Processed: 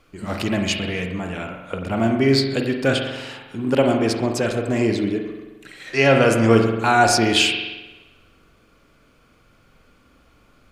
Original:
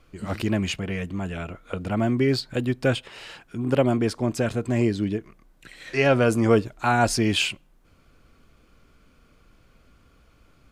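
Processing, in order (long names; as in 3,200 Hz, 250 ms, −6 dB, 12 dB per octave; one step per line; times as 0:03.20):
low-shelf EQ 120 Hz −7.5 dB
spring reverb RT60 1.2 s, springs 44 ms, chirp 25 ms, DRR 3 dB
dynamic equaliser 5,000 Hz, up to +5 dB, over −41 dBFS, Q 0.78
level +3 dB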